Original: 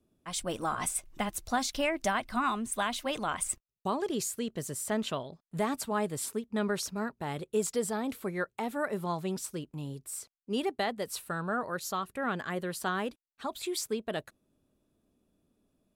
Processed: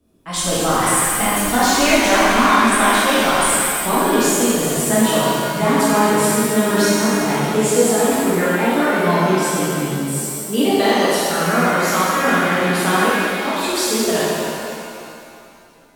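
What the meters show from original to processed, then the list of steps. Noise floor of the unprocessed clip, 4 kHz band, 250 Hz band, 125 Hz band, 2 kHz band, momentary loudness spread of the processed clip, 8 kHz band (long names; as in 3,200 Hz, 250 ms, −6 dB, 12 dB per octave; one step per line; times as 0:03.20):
−82 dBFS, +18.0 dB, +17.5 dB, +17.0 dB, +19.0 dB, 7 LU, +17.5 dB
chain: reverb with rising layers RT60 2.4 s, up +7 semitones, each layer −8 dB, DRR −10 dB
level +6.5 dB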